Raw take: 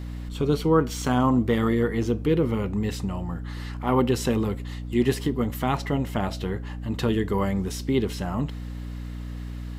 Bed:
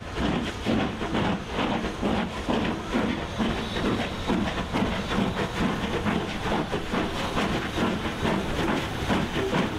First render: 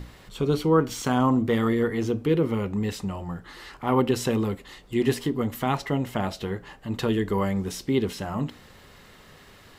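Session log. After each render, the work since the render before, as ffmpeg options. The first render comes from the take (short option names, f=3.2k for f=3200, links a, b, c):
-af "bandreject=f=60:t=h:w=6,bandreject=f=120:t=h:w=6,bandreject=f=180:t=h:w=6,bandreject=f=240:t=h:w=6,bandreject=f=300:t=h:w=6"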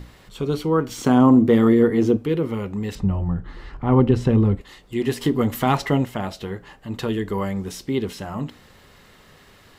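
-filter_complex "[0:a]asettb=1/sr,asplit=3[a][b][c];[a]atrim=end=0.984[d];[b]atrim=start=0.98:end=2.17,asetpts=PTS-STARTPTS,afade=t=in:d=0.004:c=qsin,afade=t=out:st=1.186:d=0.004:c=qsin,equalizer=f=290:w=0.52:g=9.5[e];[c]atrim=start=2.166[f];[d][e]acrossfade=d=0.004:c1=hsin:c2=qsin[g];[g][f]acrossfade=d=0.004:c1=qsin:c2=hsin,asettb=1/sr,asplit=3[h][i][j];[h]atrim=end=2.954[k];[i]atrim=start=2.95:end=4.61,asetpts=PTS-STARTPTS,afade=t=in:d=0.004:c=qsin,afade=t=out:st=1.656:d=0.004:c=qsin,aemphasis=mode=reproduction:type=riaa[l];[j]atrim=start=4.606[m];[k][l]acrossfade=d=0.004:c1=hsin:c2=qsin[n];[n][m]acrossfade=d=0.004:c1=qsin:c2=hsin,asettb=1/sr,asplit=3[o][p][q];[o]atrim=end=5.214[r];[p]atrim=start=5.21:end=6.05,asetpts=PTS-STARTPTS,afade=t=in:d=0.004:c=qsin,afade=t=out:st=0.836:d=0.004:c=qsin,acontrast=60[s];[q]atrim=start=6.046[t];[r][s]acrossfade=d=0.004:c1=hsin:c2=qsin[u];[u][t]acrossfade=d=0.004:c1=qsin:c2=hsin"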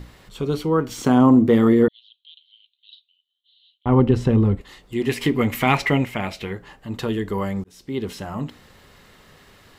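-filter_complex "[0:a]asettb=1/sr,asplit=3[a][b][c];[a]atrim=end=1.884[d];[b]atrim=start=1.88:end=3.86,asetpts=PTS-STARTPTS,afade=t=in:d=0.004:c=qsin,afade=t=out:st=1.976:d=0.004:c=qsin,asuperpass=centerf=3500:order=8:qfactor=3.1[e];[c]atrim=start=3.856[f];[d][e]acrossfade=d=0.004:c1=hsin:c2=qsin[g];[g][f]acrossfade=d=0.004:c1=qsin:c2=hsin,asettb=1/sr,asplit=3[h][i][j];[h]atrim=end=5.094[k];[i]atrim=start=5.09:end=6.53,asetpts=PTS-STARTPTS,afade=t=in:d=0.004:c=qsin,afade=t=out:st=1.436:d=0.004:c=qsin,equalizer=f=2.3k:w=3:g=14.5[l];[j]atrim=start=6.526[m];[k][l]acrossfade=d=0.004:c1=hsin:c2=qsin[n];[n][m]acrossfade=d=0.004:c1=qsin:c2=hsin,asplit=2[o][p];[o]atrim=end=7.64,asetpts=PTS-STARTPTS,afade=t=out:st=7.636:d=0.004:c=hsin[q];[p]atrim=start=7.64,asetpts=PTS-STARTPTS,afade=t=in:d=0.48[r];[q][r]concat=n=2:v=0:a=1"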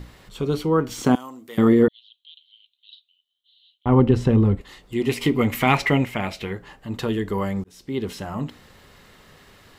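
-filter_complex "[0:a]asettb=1/sr,asplit=3[a][b][c];[a]atrim=end=1.154[d];[b]atrim=start=1.15:end=1.58,asetpts=PTS-STARTPTS,afade=t=in:d=0.004:c=qsin,afade=t=out:st=0.426:d=0.004:c=qsin,aderivative[e];[c]atrim=start=1.576[f];[d][e]acrossfade=d=0.004:c1=hsin:c2=qsin[g];[g][f]acrossfade=d=0.004:c1=qsin:c2=hsin,asettb=1/sr,asplit=3[h][i][j];[h]atrim=end=5.014[k];[i]atrim=start=5.01:end=5.45,asetpts=PTS-STARTPTS,afade=t=in:d=0.004:c=qsin,afade=t=out:st=0.436:d=0.004:c=qsin,bandreject=f=1.7k:w=5.7[l];[j]atrim=start=5.446[m];[k][l]acrossfade=d=0.004:c1=hsin:c2=qsin[n];[n][m]acrossfade=d=0.004:c1=qsin:c2=hsin"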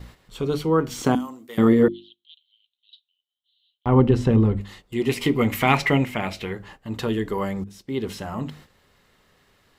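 -af "bandreject=f=50:t=h:w=6,bandreject=f=100:t=h:w=6,bandreject=f=150:t=h:w=6,bandreject=f=200:t=h:w=6,bandreject=f=250:t=h:w=6,bandreject=f=300:t=h:w=6,bandreject=f=350:t=h:w=6,agate=range=-10dB:threshold=-45dB:ratio=16:detection=peak"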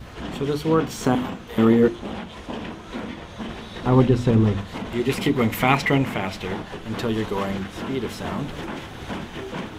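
-filter_complex "[1:a]volume=-6.5dB[a];[0:a][a]amix=inputs=2:normalize=0"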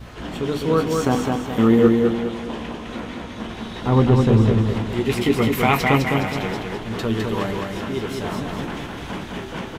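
-filter_complex "[0:a]asplit=2[a][b];[b]adelay=17,volume=-11dB[c];[a][c]amix=inputs=2:normalize=0,aecho=1:1:207|414|621|828|1035:0.668|0.274|0.112|0.0461|0.0189"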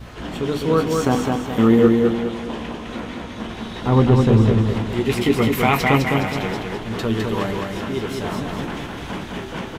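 -af "volume=1dB,alimiter=limit=-3dB:level=0:latency=1"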